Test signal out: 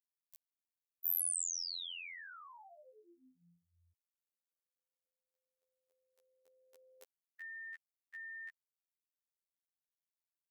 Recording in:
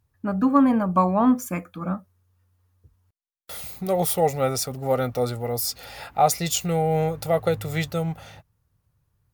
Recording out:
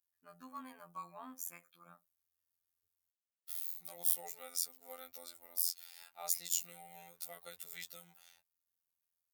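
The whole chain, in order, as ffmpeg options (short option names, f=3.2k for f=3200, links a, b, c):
-af "aderivative,afftfilt=real='hypot(re,im)*cos(PI*b)':imag='0':win_size=2048:overlap=0.75,volume=-6dB"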